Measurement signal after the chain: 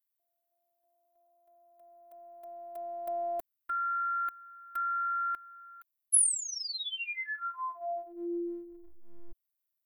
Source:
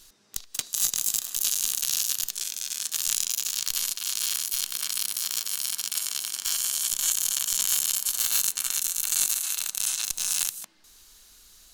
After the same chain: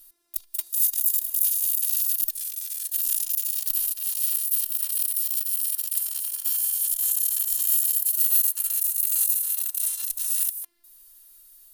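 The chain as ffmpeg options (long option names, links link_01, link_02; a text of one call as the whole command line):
ffmpeg -i in.wav -af "afftfilt=real='hypot(re,im)*cos(PI*b)':imag='0':win_size=512:overlap=0.75,aexciter=amount=7.8:drive=6.1:freq=9400,volume=-7.5dB" out.wav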